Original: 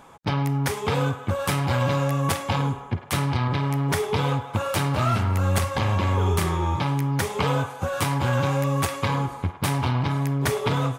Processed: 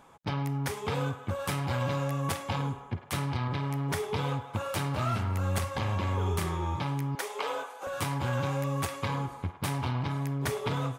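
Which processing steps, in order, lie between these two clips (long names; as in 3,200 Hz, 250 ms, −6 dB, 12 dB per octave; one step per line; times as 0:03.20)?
0:07.15–0:07.87: high-pass filter 380 Hz 24 dB per octave
level −7.5 dB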